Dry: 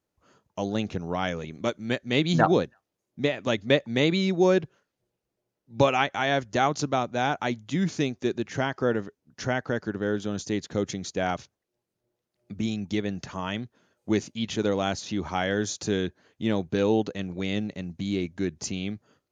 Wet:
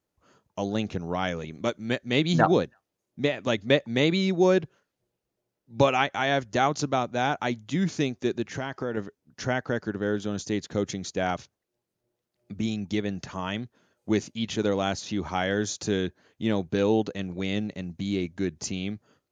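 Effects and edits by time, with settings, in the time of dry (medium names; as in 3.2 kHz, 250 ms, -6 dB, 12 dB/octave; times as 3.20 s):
8.50–8.97 s: compression 4:1, threshold -26 dBFS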